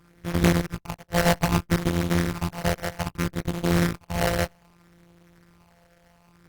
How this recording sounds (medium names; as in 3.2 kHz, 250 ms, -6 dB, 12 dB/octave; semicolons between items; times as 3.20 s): a buzz of ramps at a fixed pitch in blocks of 256 samples; phasing stages 6, 0.63 Hz, lowest notch 270–1200 Hz; aliases and images of a low sample rate 3.6 kHz, jitter 20%; Opus